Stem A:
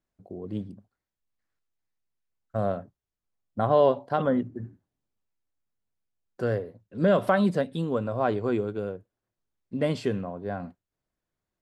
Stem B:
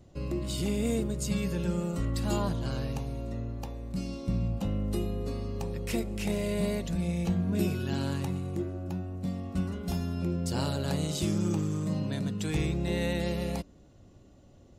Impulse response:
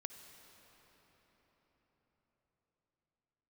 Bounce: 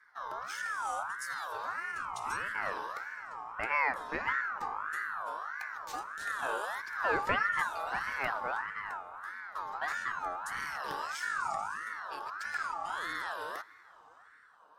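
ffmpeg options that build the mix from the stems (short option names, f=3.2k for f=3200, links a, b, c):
-filter_complex "[0:a]dynaudnorm=f=210:g=17:m=10.5dB,volume=-18dB,asplit=2[a][b];[b]volume=-6dB[c];[1:a]asplit=2[d][e];[e]afreqshift=0.75[f];[d][f]amix=inputs=2:normalize=1,volume=-4.5dB,asplit=2[g][h];[h]volume=-5dB[i];[2:a]atrim=start_sample=2205[j];[c][i]amix=inputs=2:normalize=0[k];[k][j]afir=irnorm=-1:irlink=0[l];[a][g][l]amix=inputs=3:normalize=0,aeval=exprs='val(0)*sin(2*PI*1300*n/s+1300*0.25/1.6*sin(2*PI*1.6*n/s))':c=same"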